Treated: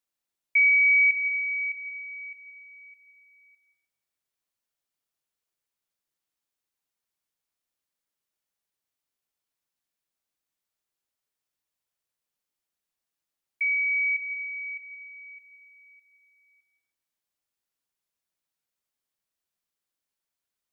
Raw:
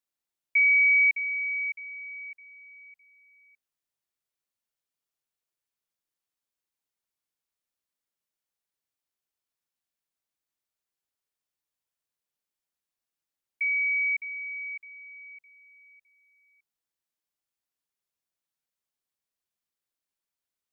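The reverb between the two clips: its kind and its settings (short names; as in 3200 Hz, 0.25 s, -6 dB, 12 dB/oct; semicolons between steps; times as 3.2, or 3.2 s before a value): digital reverb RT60 0.89 s, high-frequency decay 0.95×, pre-delay 0.11 s, DRR 11 dB; gain +1.5 dB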